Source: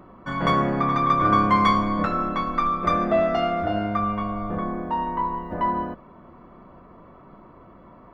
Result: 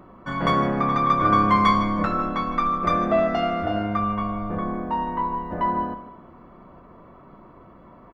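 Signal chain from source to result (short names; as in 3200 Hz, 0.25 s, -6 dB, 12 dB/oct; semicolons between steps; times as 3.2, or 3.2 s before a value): feedback echo 0.154 s, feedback 34%, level -14 dB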